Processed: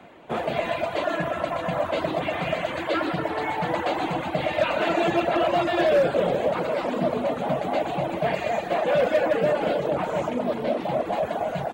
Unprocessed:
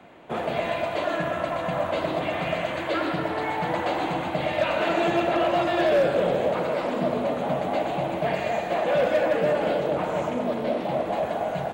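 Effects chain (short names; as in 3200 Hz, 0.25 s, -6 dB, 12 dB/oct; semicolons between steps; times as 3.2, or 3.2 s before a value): reverb removal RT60 0.63 s; gain +2 dB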